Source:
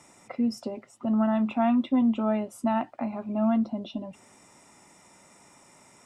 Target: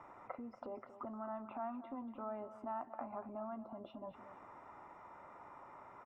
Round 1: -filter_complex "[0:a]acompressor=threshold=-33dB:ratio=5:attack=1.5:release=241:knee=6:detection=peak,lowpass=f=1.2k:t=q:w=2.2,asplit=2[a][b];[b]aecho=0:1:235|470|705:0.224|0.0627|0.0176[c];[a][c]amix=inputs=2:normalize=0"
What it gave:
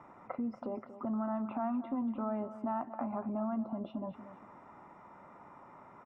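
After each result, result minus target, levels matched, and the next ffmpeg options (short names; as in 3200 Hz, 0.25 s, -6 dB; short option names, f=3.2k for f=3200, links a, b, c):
compressor: peak gain reduction -5 dB; 250 Hz band +3.0 dB
-filter_complex "[0:a]acompressor=threshold=-39.5dB:ratio=5:attack=1.5:release=241:knee=6:detection=peak,lowpass=f=1.2k:t=q:w=2.2,asplit=2[a][b];[b]aecho=0:1:235|470|705:0.224|0.0627|0.0176[c];[a][c]amix=inputs=2:normalize=0"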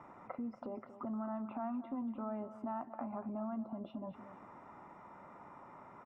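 250 Hz band +3.0 dB
-filter_complex "[0:a]acompressor=threshold=-39.5dB:ratio=5:attack=1.5:release=241:knee=6:detection=peak,lowpass=f=1.2k:t=q:w=2.2,equalizer=f=190:t=o:w=1.2:g=-10,asplit=2[a][b];[b]aecho=0:1:235|470|705:0.224|0.0627|0.0176[c];[a][c]amix=inputs=2:normalize=0"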